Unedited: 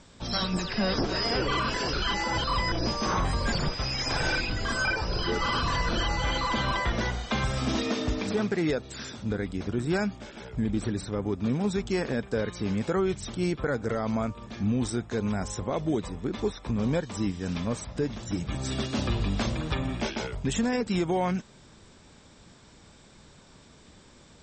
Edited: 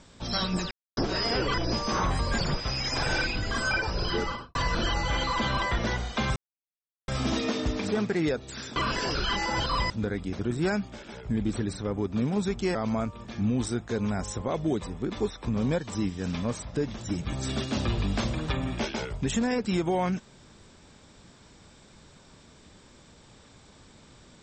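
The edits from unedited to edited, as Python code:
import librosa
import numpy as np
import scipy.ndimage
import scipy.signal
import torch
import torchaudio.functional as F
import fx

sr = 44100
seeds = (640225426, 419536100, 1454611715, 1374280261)

y = fx.studio_fade_out(x, sr, start_s=5.3, length_s=0.39)
y = fx.edit(y, sr, fx.silence(start_s=0.71, length_s=0.26),
    fx.move(start_s=1.54, length_s=1.14, to_s=9.18),
    fx.insert_silence(at_s=7.5, length_s=0.72),
    fx.cut(start_s=12.03, length_s=1.94), tone=tone)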